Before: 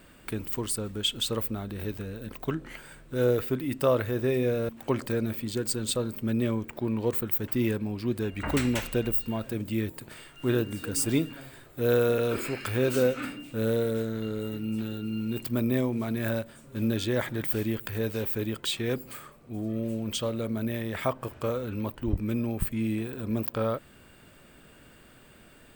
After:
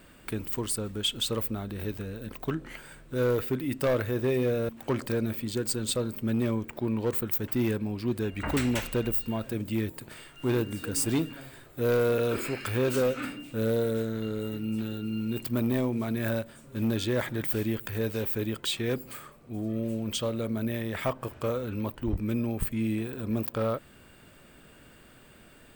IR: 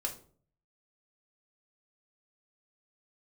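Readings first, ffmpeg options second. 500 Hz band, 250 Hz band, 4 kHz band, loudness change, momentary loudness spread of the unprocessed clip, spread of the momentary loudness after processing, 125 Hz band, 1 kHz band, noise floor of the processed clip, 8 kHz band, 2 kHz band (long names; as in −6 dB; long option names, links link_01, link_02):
−1.0 dB, −0.5 dB, −0.5 dB, −0.5 dB, 9 LU, 8 LU, −0.5 dB, −0.5 dB, −54 dBFS, 0.0 dB, −0.5 dB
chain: -af "asoftclip=type=hard:threshold=-21dB"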